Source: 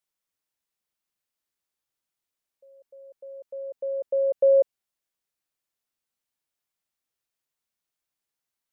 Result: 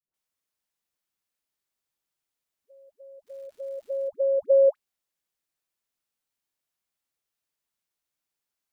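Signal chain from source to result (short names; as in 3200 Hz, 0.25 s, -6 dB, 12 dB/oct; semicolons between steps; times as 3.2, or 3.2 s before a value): dispersion highs, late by 0.141 s, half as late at 520 Hz; 3.26–4.07 crackle 410/s -52 dBFS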